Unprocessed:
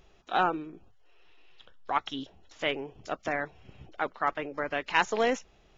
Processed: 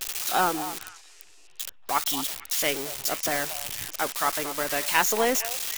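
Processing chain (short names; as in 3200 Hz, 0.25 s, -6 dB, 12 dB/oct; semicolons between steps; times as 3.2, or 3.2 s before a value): switching spikes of -20 dBFS; on a send: delay with a stepping band-pass 0.229 s, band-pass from 860 Hz, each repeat 1.4 oct, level -10 dB; on the sum: gain +2 dB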